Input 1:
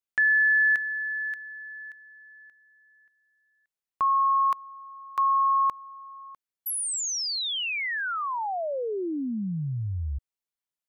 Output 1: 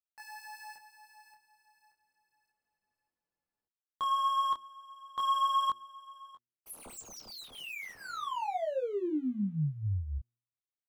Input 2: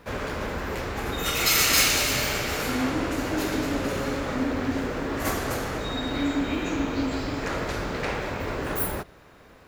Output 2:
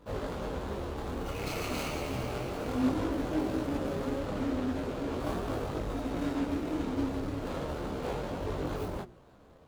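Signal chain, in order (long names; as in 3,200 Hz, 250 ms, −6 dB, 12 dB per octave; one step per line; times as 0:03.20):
running median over 25 samples
hum removal 119 Hz, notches 3
micro pitch shift up and down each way 12 cents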